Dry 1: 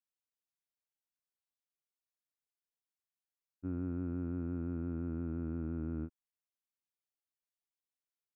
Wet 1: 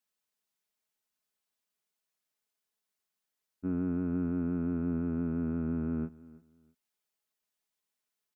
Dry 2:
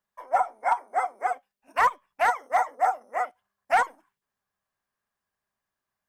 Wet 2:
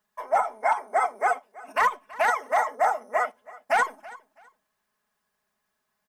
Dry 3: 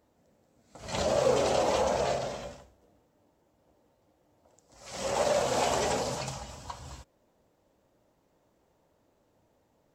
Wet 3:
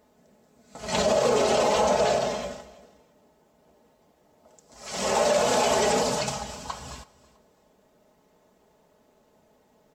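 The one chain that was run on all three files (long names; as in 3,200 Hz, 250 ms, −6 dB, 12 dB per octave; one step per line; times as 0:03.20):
low-shelf EQ 87 Hz −6.5 dB
comb filter 4.7 ms, depth 58%
brickwall limiter −19.5 dBFS
on a send: repeating echo 328 ms, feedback 24%, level −20.5 dB
on the sum: level +6.5 dB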